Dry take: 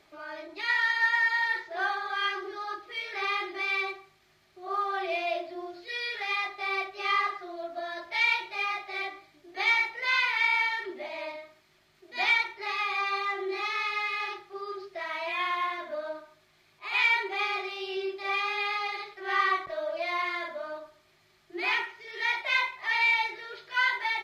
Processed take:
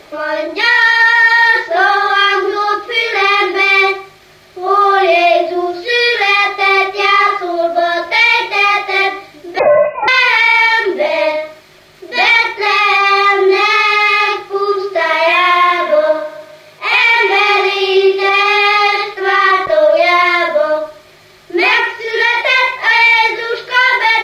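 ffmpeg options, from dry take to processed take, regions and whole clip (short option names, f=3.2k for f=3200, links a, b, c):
-filter_complex "[0:a]asettb=1/sr,asplit=3[a][b][c];[a]atrim=end=9.594[d];[b]atrim=start=9.59:end=10.08,asetpts=PTS-STARTPTS,afade=t=in:d=0.004:c=qsin,afade=t=out:st=0.486:d=0.004:c=qsin,equalizer=f=770:t=o:w=1.8:g=-12,lowpass=f=2.5k:t=q:w=0.5098,lowpass=f=2.5k:t=q:w=0.6013,lowpass=f=2.5k:t=q:w=0.9,lowpass=f=2.5k:t=q:w=2.563,afreqshift=-2900[e];[c]atrim=start=10.076[f];[d][e]acrossfade=d=0.004:c1=hsin:c2=qsin[g];[g][f]acrossfade=d=0.004:c1=qsin:c2=hsin,asettb=1/sr,asplit=3[h][i][j];[h]atrim=end=14.514[k];[i]atrim=start=14.51:end=18.46,asetpts=PTS-STARTPTS,afade=t=in:d=0.004:c=qsin,afade=t=out:st=3.946:d=0.004:c=qsin,highpass=82,aecho=1:1:142|284|426|568|710:0.224|0.103|0.0474|0.0218|0.01,atrim=end_sample=174195[l];[j]atrim=start=18.456[m];[k][l]acrossfade=d=0.004:c1=hsin:c2=qsin[n];[n][m]acrossfade=d=0.004:c1=qsin:c2=hsin,asettb=1/sr,asplit=3[o][p][q];[o]atrim=end=21.794[r];[p]atrim=start=21.79:end=22.4,asetpts=PTS-STARTPTS,afade=t=in:d=0.004:c=qsin,afade=t=out:st=0.606:d=0.004:c=qsin,aecho=1:1:2.1:0.39,atrim=end_sample=26901,acompressor=threshold=-29dB:ratio=6:attack=3.2:release=140:knee=1:detection=peak[s];[q]atrim=start=22.396[t];[r][s]acrossfade=d=0.004:c1=hsin:c2=qsin[u];[u][t]acrossfade=d=0.004:c1=qsin:c2=hsin,equalizer=f=510:t=o:w=0.4:g=10.5,alimiter=level_in=22dB:limit=-1dB:release=50:level=0:latency=1,volume=-1dB"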